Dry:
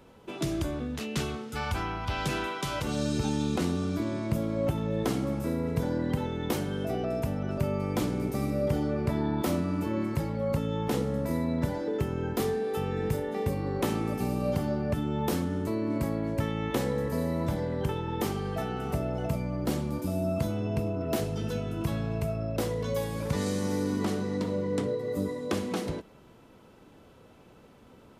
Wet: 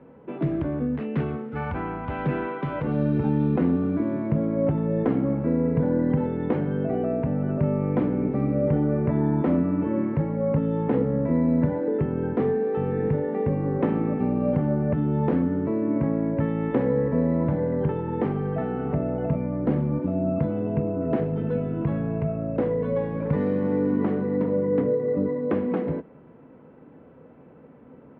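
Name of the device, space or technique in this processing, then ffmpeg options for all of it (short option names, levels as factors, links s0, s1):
bass cabinet: -af "highpass=72,equalizer=f=110:t=q:w=4:g=-5,equalizer=f=150:t=q:w=4:g=8,equalizer=f=260:t=q:w=4:g=8,equalizer=f=490:t=q:w=4:g=6,equalizer=f=1300:t=q:w=4:g=-3,lowpass=f=2000:w=0.5412,lowpass=f=2000:w=1.3066,volume=1.26"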